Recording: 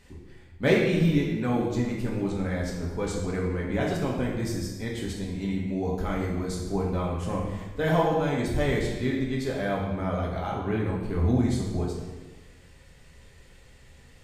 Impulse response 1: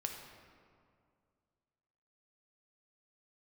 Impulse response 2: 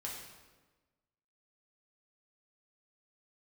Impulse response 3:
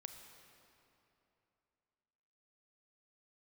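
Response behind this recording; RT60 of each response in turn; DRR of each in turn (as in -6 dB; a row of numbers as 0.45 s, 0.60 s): 2; 2.2 s, 1.3 s, 3.0 s; 2.0 dB, -4.0 dB, 5.5 dB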